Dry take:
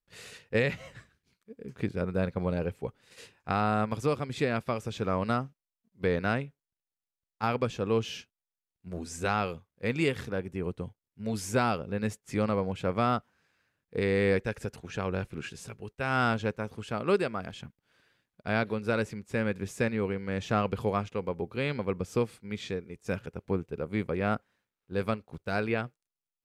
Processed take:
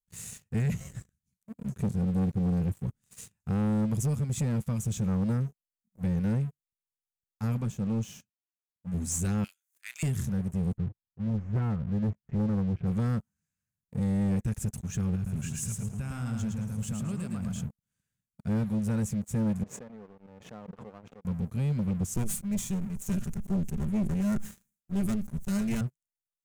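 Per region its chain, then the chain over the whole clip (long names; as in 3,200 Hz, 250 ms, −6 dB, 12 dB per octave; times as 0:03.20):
0:07.61–0:08.94: high-pass filter 190 Hz 6 dB per octave + high-shelf EQ 2,200 Hz −8.5 dB
0:09.44–0:10.03: upward compression, threshold −35 dBFS + linear-phase brick-wall high-pass 1,300 Hz + double-tracking delay 32 ms −12.5 dB
0:10.77–0:12.87: phase distortion by the signal itself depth 0.22 ms + low-pass filter 1,800 Hz 24 dB per octave + parametric band 260 Hz −5 dB 0.75 octaves
0:15.15–0:17.63: downward compressor 4 to 1, threshold −35 dBFS + repeating echo 110 ms, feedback 33%, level −4 dB
0:19.63–0:21.25: four-pole ladder band-pass 570 Hz, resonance 40% + background raised ahead of every attack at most 81 dB per second
0:22.14–0:25.81: lower of the sound and its delayed copy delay 5 ms + level that may fall only so fast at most 120 dB per second
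whole clip: drawn EQ curve 210 Hz 0 dB, 340 Hz −22 dB, 4,700 Hz −16 dB, 6,700 Hz +2 dB; leveller curve on the samples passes 3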